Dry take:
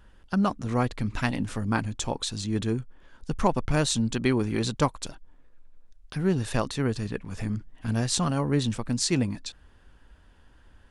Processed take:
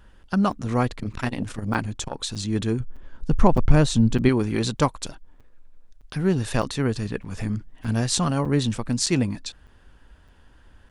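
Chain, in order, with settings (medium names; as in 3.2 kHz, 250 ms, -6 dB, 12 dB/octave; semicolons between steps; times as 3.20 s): 2.80–4.29 s: tilt EQ -2 dB/octave; crackling interface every 0.61 s, samples 256, zero, from 0.52 s; 0.93–2.30 s: transformer saturation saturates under 490 Hz; trim +3 dB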